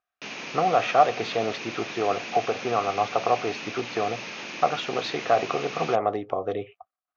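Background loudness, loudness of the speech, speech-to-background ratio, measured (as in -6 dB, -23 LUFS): -35.0 LUFS, -26.5 LUFS, 8.5 dB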